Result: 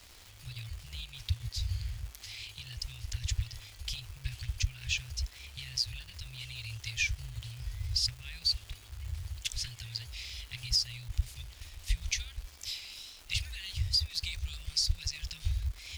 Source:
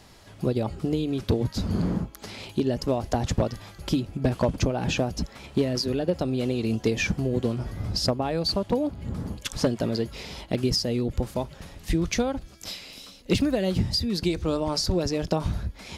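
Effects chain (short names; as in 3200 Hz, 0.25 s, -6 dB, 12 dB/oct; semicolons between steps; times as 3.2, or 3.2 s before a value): inverse Chebyshev band-stop 200–1000 Hz, stop band 50 dB; bell 12000 Hz -5 dB 0.5 oct; crackle 560/s -41 dBFS; gain -1.5 dB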